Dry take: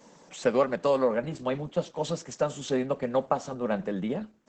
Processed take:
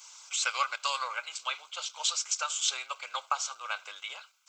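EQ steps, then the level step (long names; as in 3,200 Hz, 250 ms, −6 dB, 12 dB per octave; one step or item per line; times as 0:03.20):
high-pass filter 1,300 Hz 24 dB per octave
Butterworth band-reject 1,800 Hz, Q 3.1
high-shelf EQ 3,600 Hz +7 dB
+7.5 dB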